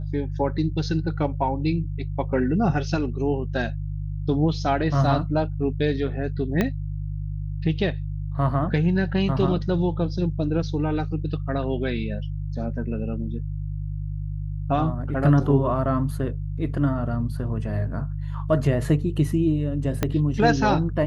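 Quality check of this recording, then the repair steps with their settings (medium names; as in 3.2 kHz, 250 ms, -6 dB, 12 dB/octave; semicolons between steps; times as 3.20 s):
hum 50 Hz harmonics 3 -29 dBFS
6.61 s: pop -9 dBFS
20.03 s: pop -8 dBFS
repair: de-click; de-hum 50 Hz, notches 3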